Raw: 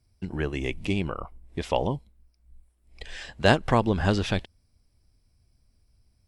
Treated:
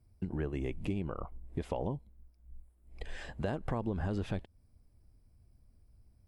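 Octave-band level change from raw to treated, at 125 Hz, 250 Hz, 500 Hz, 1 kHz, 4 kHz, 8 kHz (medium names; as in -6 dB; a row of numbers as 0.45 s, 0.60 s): -8.5 dB, -9.0 dB, -11.5 dB, -14.5 dB, -19.5 dB, -16.5 dB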